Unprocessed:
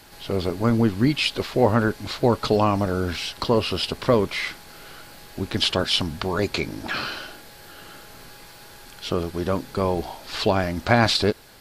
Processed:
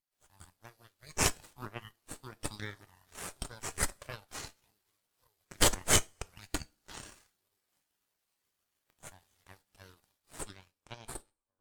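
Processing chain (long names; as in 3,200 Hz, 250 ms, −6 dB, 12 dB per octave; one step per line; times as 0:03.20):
fade-out on the ending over 1.51 s
first-order pre-emphasis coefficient 0.97
on a send: echo through a band-pass that steps 563 ms, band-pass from 250 Hz, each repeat 0.7 octaves, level −5 dB
on the sum: harmonic generator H 3 −10 dB, 6 −11 dB, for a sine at −13 dBFS
coupled-rooms reverb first 0.41 s, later 1.5 s, DRR 14 dB
every bin expanded away from the loudest bin 1.5 to 1
level +3.5 dB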